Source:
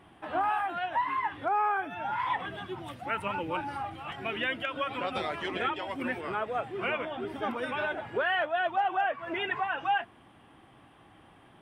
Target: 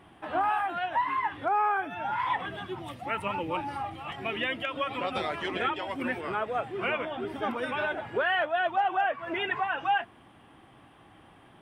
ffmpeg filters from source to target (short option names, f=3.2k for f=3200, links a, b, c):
-filter_complex "[0:a]asettb=1/sr,asplit=3[a][b][c];[a]atrim=end=2.794[d];[b]atrim=start=2.79:end=5.11,asetpts=PTS-STARTPTS,afade=t=in:d=0.004:c=qsin,afade=t=out:st=2.316:d=0.004:c=qsin,bandreject=f=1.5k:w=7.5[e];[c]atrim=start=5.106[f];[d][e]acrossfade=d=0.004:c1=hsin:c2=qsin[g];[g][f]acrossfade=d=0.004:c1=qsin:c2=hsin,volume=1.5dB"